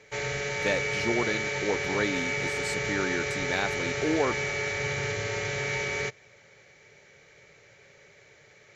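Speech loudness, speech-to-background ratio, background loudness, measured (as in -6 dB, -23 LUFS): -31.5 LUFS, -2.0 dB, -29.5 LUFS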